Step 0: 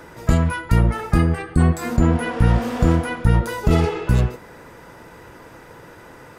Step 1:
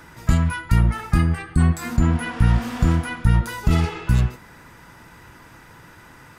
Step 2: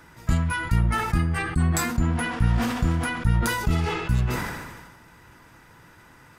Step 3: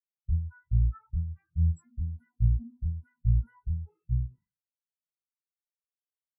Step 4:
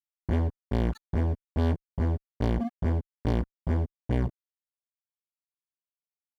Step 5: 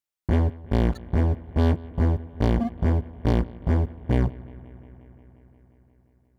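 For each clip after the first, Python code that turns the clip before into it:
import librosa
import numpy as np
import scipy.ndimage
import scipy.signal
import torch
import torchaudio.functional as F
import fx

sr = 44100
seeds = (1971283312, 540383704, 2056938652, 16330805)

y1 = fx.peak_eq(x, sr, hz=490.0, db=-12.0, octaves=1.2)
y2 = fx.sustainer(y1, sr, db_per_s=39.0)
y2 = y2 * librosa.db_to_amplitude(-5.5)
y3 = fx.spectral_expand(y2, sr, expansion=4.0)
y3 = y3 * librosa.db_to_amplitude(-6.5)
y4 = fx.fuzz(y3, sr, gain_db=37.0, gate_db=-46.0)
y4 = fx.notch_comb(y4, sr, f0_hz=1300.0)
y4 = y4 * librosa.db_to_amplitude(-4.5)
y5 = fx.echo_bbd(y4, sr, ms=177, stages=4096, feedback_pct=77, wet_db=-21)
y5 = y5 * librosa.db_to_amplitude(5.0)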